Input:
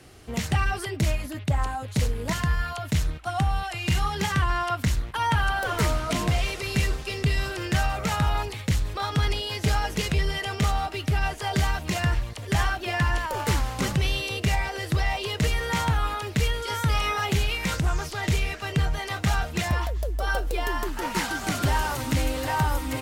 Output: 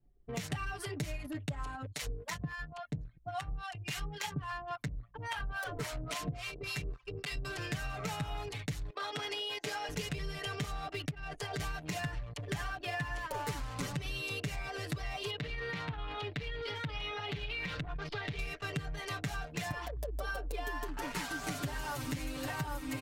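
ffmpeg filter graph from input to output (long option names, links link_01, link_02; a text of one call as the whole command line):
ffmpeg -i in.wav -filter_complex "[0:a]asettb=1/sr,asplit=3[link_01][link_02][link_03];[link_01]atrim=end=1.864[link_04];[link_02]atrim=start=1.86:end=7.45,asetpts=PTS-STARTPTS,afade=type=in:duration=0.004:curve=qsin,afade=type=out:start_time=5.586:duration=0.004:curve=qsin,acrossover=split=610[link_05][link_06];[link_05]aeval=exprs='val(0)*(1-1/2+1/2*cos(2*PI*3.6*n/s))':channel_layout=same[link_07];[link_06]aeval=exprs='val(0)*(1-1/2-1/2*cos(2*PI*3.6*n/s))':channel_layout=same[link_08];[link_07][link_08]amix=inputs=2:normalize=0,bandreject=frequency=115:width_type=h:width=4,bandreject=frequency=230:width_type=h:width=4,bandreject=frequency=345:width_type=h:width=4[link_09];[link_03]atrim=start=7.446[link_10];[link_04][link_09]acrossfade=duration=0.004:curve1=hsin:curve2=qsin[link_11];[link_11][link_10]acrossfade=duration=0.004:curve1=qsin:curve2=hsin,asettb=1/sr,asplit=3[link_12][link_13][link_14];[link_12]atrim=end=8.904[link_15];[link_13]atrim=start=8.9:end=9.89,asetpts=PTS-STARTPTS,afade=type=in:duration=0.004:curve=qsin,afade=type=out:start_time=0.986:duration=0.004:curve=qsin,highpass=380,highshelf=frequency=8900:gain=-6[link_16];[link_14]atrim=start=9.886[link_17];[link_15][link_16]acrossfade=duration=0.004:curve1=hsin:curve2=qsin[link_18];[link_18][link_17]acrossfade=duration=0.004:curve1=qsin:curve2=hsin,asettb=1/sr,asplit=3[link_19][link_20][link_21];[link_19]atrim=end=11.104[link_22];[link_20]atrim=start=11.1:end=11.6,asetpts=PTS-STARTPTS,afade=type=in:duration=0.004:curve=qsin,afade=type=out:start_time=0.496:duration=0.004:curve=qsin,acompressor=threshold=-27dB:ratio=16:attack=3.2:release=140:knee=1:detection=peak,aeval=exprs='sgn(val(0))*max(abs(val(0))-0.0015,0)':channel_layout=same[link_23];[link_21]atrim=start=11.596[link_24];[link_22][link_23]acrossfade=duration=0.004:curve1=hsin:curve2=qsin[link_25];[link_25][link_24]acrossfade=duration=0.004:curve1=qsin:curve2=hsin,asettb=1/sr,asplit=3[link_26][link_27][link_28];[link_26]atrim=end=15.304[link_29];[link_27]atrim=start=15.3:end=18.39,asetpts=PTS-STARTPTS,afade=type=in:duration=0.004:curve=qsin,afade=type=out:start_time=3.086:duration=0.004:curve=qsin,highshelf=frequency=5300:width_type=q:width=1.5:gain=-12,acompressor=threshold=-28dB:ratio=4:attack=3.2:release=140:knee=1:detection=peak[link_30];[link_28]atrim=start=18.386[link_31];[link_29][link_30]acrossfade=duration=0.004:curve1=hsin:curve2=qsin[link_32];[link_32][link_31]acrossfade=duration=0.004:curve1=qsin:curve2=hsin,aecho=1:1:6.9:0.95,anlmdn=3.98,acompressor=threshold=-28dB:ratio=6,volume=-6.5dB" out.wav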